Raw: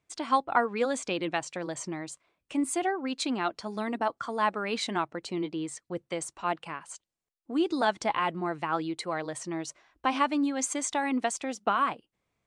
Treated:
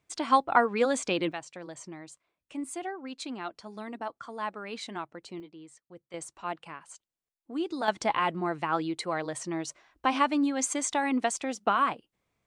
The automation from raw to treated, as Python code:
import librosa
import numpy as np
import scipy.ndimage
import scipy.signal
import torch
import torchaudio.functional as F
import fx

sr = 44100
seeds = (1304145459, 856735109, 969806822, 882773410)

y = fx.gain(x, sr, db=fx.steps((0.0, 2.5), (1.32, -7.5), (5.4, -14.5), (6.14, -5.0), (7.88, 1.0)))